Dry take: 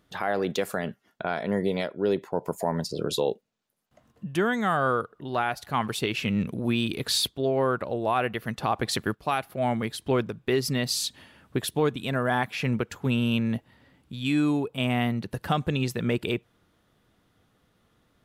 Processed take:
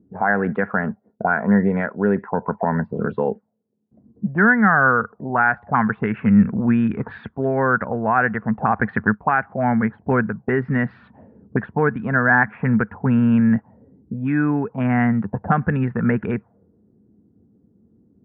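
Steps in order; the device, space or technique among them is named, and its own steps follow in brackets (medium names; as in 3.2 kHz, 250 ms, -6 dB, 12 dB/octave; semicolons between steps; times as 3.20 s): envelope filter bass rig (touch-sensitive low-pass 340–1600 Hz up, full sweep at -24 dBFS; cabinet simulation 65–2000 Hz, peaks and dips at 91 Hz +4 dB, 210 Hz +9 dB, 340 Hz -8 dB, 590 Hz -6 dB, 1.2 kHz -6 dB); trim +6 dB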